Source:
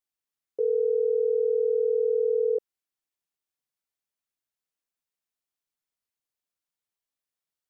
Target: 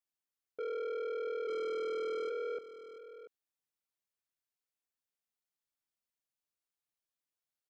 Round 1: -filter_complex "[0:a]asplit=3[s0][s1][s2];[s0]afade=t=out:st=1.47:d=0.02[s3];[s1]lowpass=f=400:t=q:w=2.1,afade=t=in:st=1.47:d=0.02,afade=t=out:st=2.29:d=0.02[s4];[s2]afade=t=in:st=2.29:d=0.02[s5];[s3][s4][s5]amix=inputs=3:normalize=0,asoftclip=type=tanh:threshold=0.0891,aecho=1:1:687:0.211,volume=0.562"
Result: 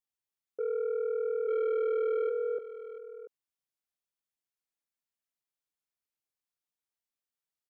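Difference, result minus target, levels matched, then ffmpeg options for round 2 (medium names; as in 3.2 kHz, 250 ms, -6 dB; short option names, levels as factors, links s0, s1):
saturation: distortion -7 dB
-filter_complex "[0:a]asplit=3[s0][s1][s2];[s0]afade=t=out:st=1.47:d=0.02[s3];[s1]lowpass=f=400:t=q:w=2.1,afade=t=in:st=1.47:d=0.02,afade=t=out:st=2.29:d=0.02[s4];[s2]afade=t=in:st=2.29:d=0.02[s5];[s3][s4][s5]amix=inputs=3:normalize=0,asoftclip=type=tanh:threshold=0.0299,aecho=1:1:687:0.211,volume=0.562"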